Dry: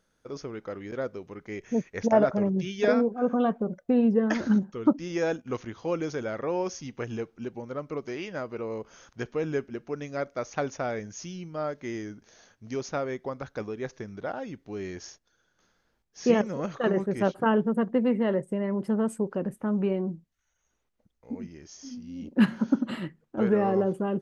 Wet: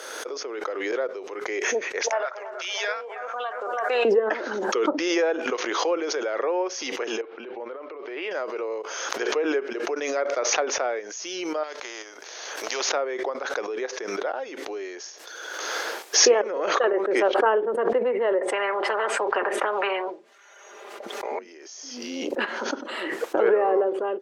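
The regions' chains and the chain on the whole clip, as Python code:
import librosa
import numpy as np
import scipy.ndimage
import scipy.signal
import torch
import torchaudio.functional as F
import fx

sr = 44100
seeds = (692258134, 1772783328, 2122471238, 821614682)

y = fx.chain(x, sr, fx.highpass(hz=1200.0, slope=12),
    fx.echo_bbd(ms=328, stages=4096, feedback_pct=34, wet_db=-13.0), at=(2.01, 4.05))
y = fx.chain(y, sr, fx.lowpass(hz=3400.0, slope=24),
    fx.over_compress(threshold_db=-38.0, ratio=-1.0), at=(7.21, 8.31))
y = fx.chain(y, sr, fx.level_steps(step_db=9),
    fx.spectral_comp(ratio=2.0), at=(11.63, 12.92))
y = fx.chain(y, sr, fx.lowpass(hz=1500.0, slope=6),
    fx.comb(ms=5.0, depth=0.68),
    fx.spectral_comp(ratio=4.0), at=(18.41, 21.39))
y = scipy.signal.sosfilt(scipy.signal.butter(6, 370.0, 'highpass', fs=sr, output='sos'), y)
y = fx.env_lowpass_down(y, sr, base_hz=2500.0, full_db=-25.5)
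y = fx.pre_swell(y, sr, db_per_s=27.0)
y = y * librosa.db_to_amplitude(4.5)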